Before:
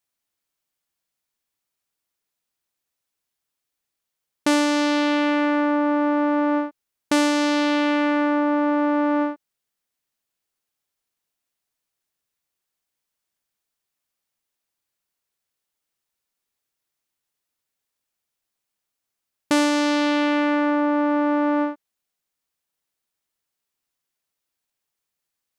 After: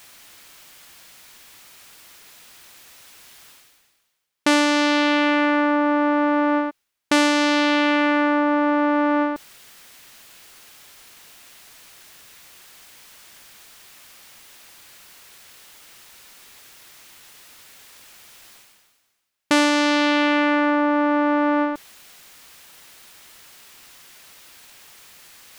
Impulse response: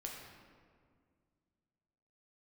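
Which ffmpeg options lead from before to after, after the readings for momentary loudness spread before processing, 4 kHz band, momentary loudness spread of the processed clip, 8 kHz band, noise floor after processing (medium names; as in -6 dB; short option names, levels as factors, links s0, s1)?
4 LU, +4.5 dB, 5 LU, +2.5 dB, -68 dBFS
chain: -af "equalizer=f=2300:t=o:w=2.6:g=5.5,areverse,acompressor=mode=upward:threshold=0.0891:ratio=2.5,areverse"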